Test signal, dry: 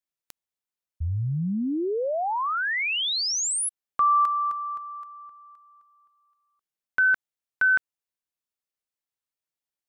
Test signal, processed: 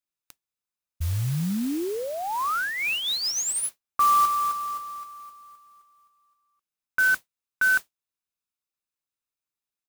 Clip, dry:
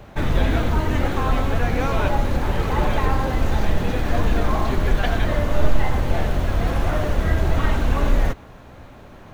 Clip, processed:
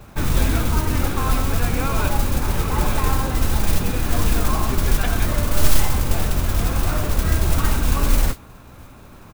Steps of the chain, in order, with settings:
comb filter 0.8 ms, depth 33%
noise that follows the level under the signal 15 dB
level −1.5 dB

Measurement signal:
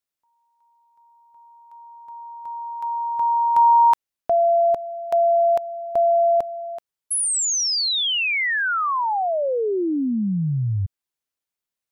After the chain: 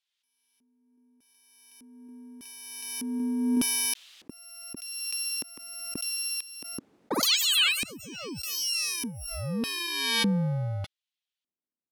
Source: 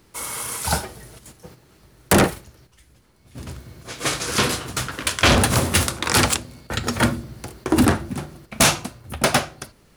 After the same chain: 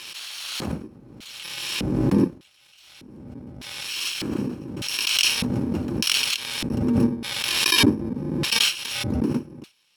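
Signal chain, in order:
samples in bit-reversed order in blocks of 64 samples
auto-filter band-pass square 0.83 Hz 270–3,300 Hz
background raised ahead of every attack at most 27 dB per second
level +5.5 dB

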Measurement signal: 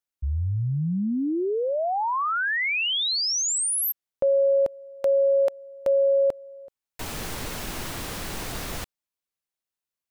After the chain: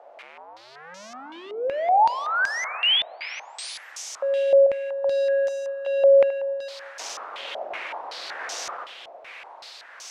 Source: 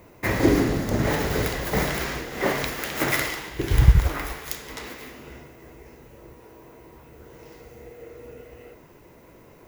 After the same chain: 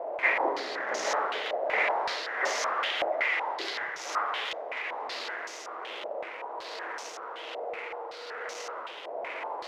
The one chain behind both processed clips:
converter with a step at zero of −26 dBFS
four-pole ladder high-pass 480 Hz, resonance 30%
shaped tremolo triangle 1.2 Hz, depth 45%
dense smooth reverb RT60 4.5 s, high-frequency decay 1×, pre-delay 0 ms, DRR 8 dB
low-pass on a step sequencer 5.3 Hz 660–6,000 Hz

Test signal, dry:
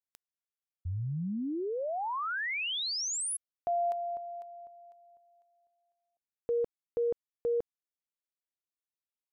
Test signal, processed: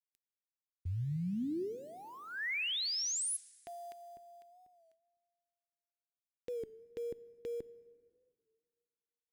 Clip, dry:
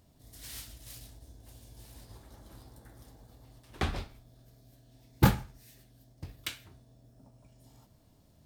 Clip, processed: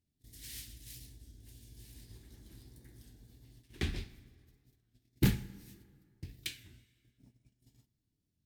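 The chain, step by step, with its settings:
noise gate −56 dBFS, range −18 dB
in parallel at −12 dB: floating-point word with a short mantissa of 2 bits
on the sum: asymmetric clip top −20 dBFS
flat-topped bell 840 Hz −14.5 dB
dense smooth reverb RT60 2.1 s, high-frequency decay 0.7×, DRR 18 dB
wow of a warped record 33 1/3 rpm, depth 100 cents
level −4 dB

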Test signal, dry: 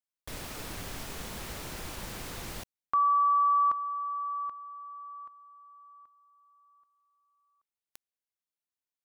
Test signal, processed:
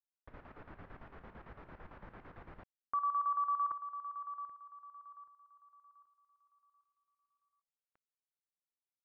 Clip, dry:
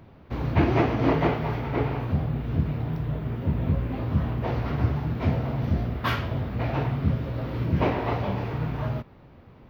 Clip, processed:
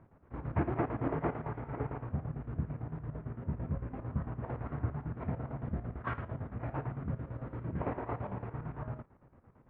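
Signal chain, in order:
square-wave tremolo 8.9 Hz, depth 65%, duty 60%
transistor ladder low-pass 2,000 Hz, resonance 25%
level −4 dB

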